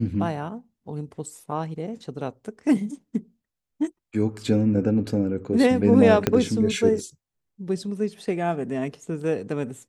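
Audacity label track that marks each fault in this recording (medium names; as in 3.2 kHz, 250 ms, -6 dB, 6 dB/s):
6.270000	6.270000	pop -6 dBFS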